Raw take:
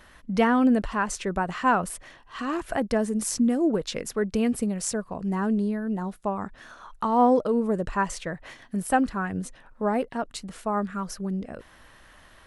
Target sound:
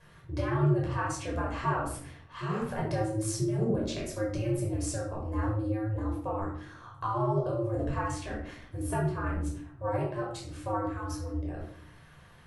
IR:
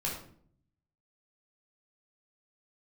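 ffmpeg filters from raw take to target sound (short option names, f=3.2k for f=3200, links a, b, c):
-filter_complex "[0:a]acompressor=threshold=-23dB:ratio=6,aeval=exprs='val(0)*sin(2*PI*110*n/s)':c=same[a];[1:a]atrim=start_sample=2205[b];[a][b]afir=irnorm=-1:irlink=0,volume=-5.5dB"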